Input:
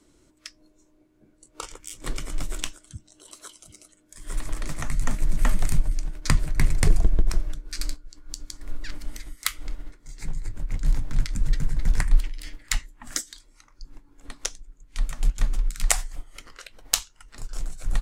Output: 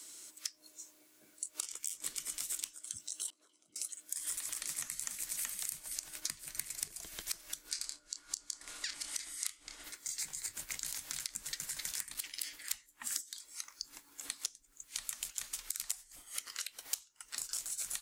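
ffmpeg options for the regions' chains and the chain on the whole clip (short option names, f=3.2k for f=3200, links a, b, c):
-filter_complex "[0:a]asettb=1/sr,asplit=3[a][b][c];[a]atrim=end=3.304[d];[b]atrim=start=3.3:end=3.76,asetpts=PTS-STARTPTS,afade=t=in:d=0.004:c=qsin,afade=t=out:st=0.456:d=0.004:c=qsin,acompressor=threshold=-49dB:ratio=10:attack=3.2:release=140:knee=1:detection=peak,bandpass=f=270:t=q:w=1.5,asplit=2[e][f];[f]adelay=24,volume=-12dB[g];[e][g]amix=inputs=2:normalize=0,atrim=end_sample=20286[h];[c]atrim=start=3.756[i];[d][h]acrossfade=d=0.004:c1=hsin:c2=qsin[j];[j][i]acrossfade=d=0.004:c1=qsin:c2=hsin,asettb=1/sr,asplit=3[k][l][m];[k]atrim=end=7.694[n];[l]atrim=start=7.69:end=9.84,asetpts=PTS-STARTPTS,afade=t=in:d=0.004:c=qsin,afade=t=out:st=2.146:d=0.004:c=qsin,lowpass=f=9.5k:w=0.5412,lowpass=f=9.5k:w=1.3066,bandreject=f=60:t=h:w=6,bandreject=f=120:t=h:w=6,bandreject=f=180:t=h:w=6,bandreject=f=240:t=h:w=6,bandreject=f=300:t=h:w=6,bandreject=f=360:t=h:w=6,bandreject=f=420:t=h:w=6,bandreject=f=480:t=h:w=6,bandreject=f=540:t=h:w=6,bandreject=f=600:t=h:w=6,asplit=2[o][p];[p]adelay=28,volume=-8.5dB[q];[o][q]amix=inputs=2:normalize=0,atrim=end_sample=94815[r];[m]atrim=start=9.836[s];[n][r]acrossfade=d=0.004:c1=hsin:c2=qsin[t];[t][s]acrossfade=d=0.004:c1=qsin:c2=hsin,asettb=1/sr,asplit=3[u][v][w];[u]atrim=end=11.914[x];[v]atrim=start=11.91:end=12.53,asetpts=PTS-STARTPTS,afade=t=in:d=0.004:c=qsin,afade=t=out:st=0.616:d=0.004:c=qsin,highpass=f=110:p=1,asoftclip=type=hard:threshold=-20.5dB[y];[w]atrim=start=12.526[z];[x][y]acrossfade=d=0.004:c1=hsin:c2=qsin[aa];[aa][z]acrossfade=d=0.004:c1=qsin:c2=hsin,acrossover=split=360|1500[ab][ac][ad];[ab]acompressor=threshold=-28dB:ratio=4[ae];[ac]acompressor=threshold=-54dB:ratio=4[af];[ad]acompressor=threshold=-45dB:ratio=4[ag];[ae][af][ag]amix=inputs=3:normalize=0,aderivative,acompressor=threshold=-56dB:ratio=3,volume=18dB"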